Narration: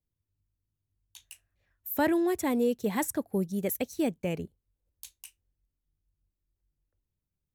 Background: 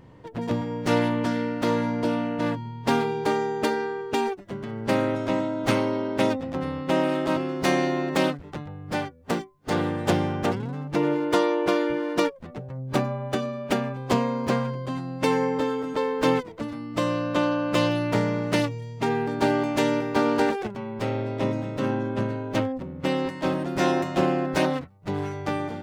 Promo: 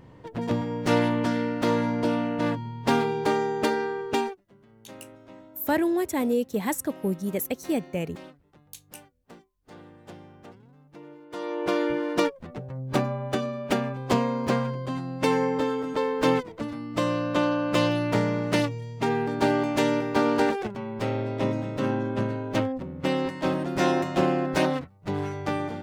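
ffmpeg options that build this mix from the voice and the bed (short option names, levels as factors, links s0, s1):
-filter_complex "[0:a]adelay=3700,volume=1.26[s0];[1:a]volume=12.6,afade=t=out:st=4.17:d=0.22:silence=0.0749894,afade=t=in:st=11.3:d=0.55:silence=0.0794328[s1];[s0][s1]amix=inputs=2:normalize=0"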